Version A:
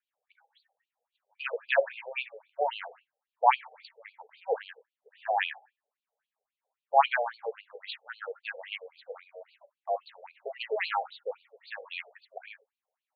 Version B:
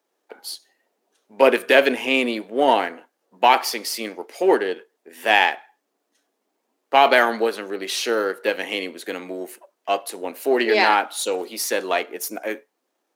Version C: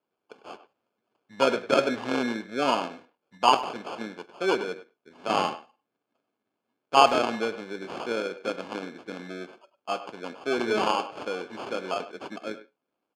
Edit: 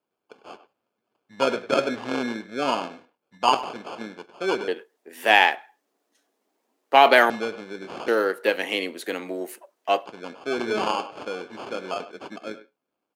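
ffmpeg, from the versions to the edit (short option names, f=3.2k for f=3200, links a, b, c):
-filter_complex "[1:a]asplit=2[a][b];[2:a]asplit=3[c][d][e];[c]atrim=end=4.682[f];[a]atrim=start=4.678:end=7.302[g];[d]atrim=start=7.298:end=8.082[h];[b]atrim=start=8.078:end=10.062[i];[e]atrim=start=10.058[j];[f][g]acrossfade=d=0.004:c1=hsin:c2=hsin[k];[k][h]acrossfade=d=0.004:c1=hsin:c2=hsin[l];[l][i]acrossfade=d=0.004:c1=hsin:c2=hsin[m];[m][j]acrossfade=d=0.004:c1=hsin:c2=hsin"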